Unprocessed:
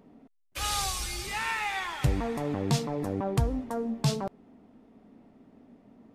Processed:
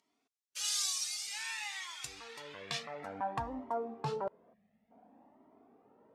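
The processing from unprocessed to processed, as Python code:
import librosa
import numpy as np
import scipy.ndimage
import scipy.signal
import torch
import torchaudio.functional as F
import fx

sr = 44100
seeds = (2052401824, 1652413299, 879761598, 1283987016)

y = fx.filter_sweep_bandpass(x, sr, from_hz=6100.0, to_hz=760.0, start_s=2.06, end_s=3.6, q=1.3)
y = fx.spec_box(y, sr, start_s=4.53, length_s=0.37, low_hz=230.0, high_hz=1600.0, gain_db=-18)
y = fx.comb_cascade(y, sr, direction='rising', hz=0.55)
y = y * 10.0 ** (6.0 / 20.0)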